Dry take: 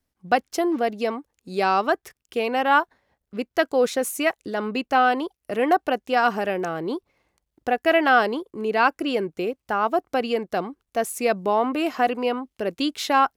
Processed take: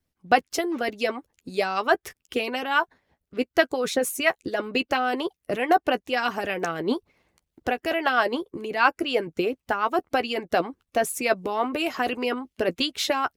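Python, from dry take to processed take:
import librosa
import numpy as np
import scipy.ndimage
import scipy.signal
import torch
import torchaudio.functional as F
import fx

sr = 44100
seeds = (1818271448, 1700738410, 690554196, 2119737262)

p1 = fx.bass_treble(x, sr, bass_db=0, treble_db=-4)
p2 = fx.hpss(p1, sr, part='harmonic', gain_db=-12)
p3 = fx.peak_eq(p2, sr, hz=900.0, db=-4.5, octaves=2.4)
p4 = fx.rider(p3, sr, range_db=10, speed_s=0.5)
p5 = p3 + F.gain(torch.from_numpy(p4), 0.5).numpy()
y = fx.doubler(p5, sr, ms=12.0, db=-11.0)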